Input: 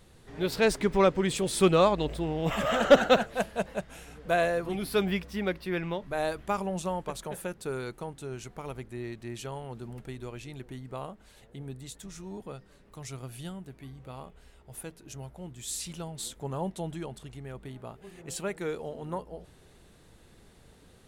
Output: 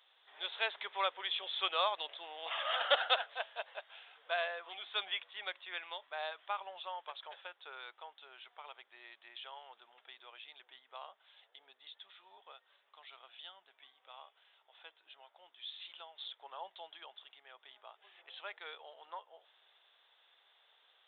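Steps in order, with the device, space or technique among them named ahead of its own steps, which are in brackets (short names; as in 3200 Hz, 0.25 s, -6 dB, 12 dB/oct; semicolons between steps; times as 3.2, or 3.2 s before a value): musical greeting card (downsampling 8000 Hz; HPF 730 Hz 24 dB/oct; bell 3400 Hz +11 dB 0.39 oct); gain -6.5 dB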